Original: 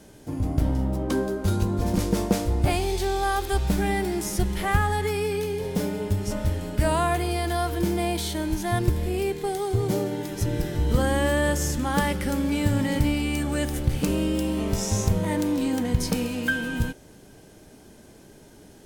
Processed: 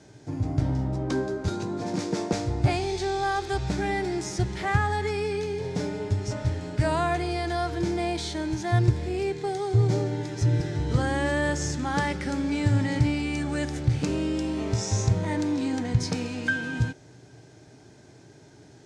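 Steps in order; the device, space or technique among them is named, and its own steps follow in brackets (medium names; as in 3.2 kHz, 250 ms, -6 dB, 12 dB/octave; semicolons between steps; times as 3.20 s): car door speaker (cabinet simulation 97–7000 Hz, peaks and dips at 120 Hz +10 dB, 210 Hz -10 dB, 520 Hz -6 dB, 1.1 kHz -4 dB, 3 kHz -6 dB); 1.48–2.33 s: high-pass 150 Hz 24 dB/octave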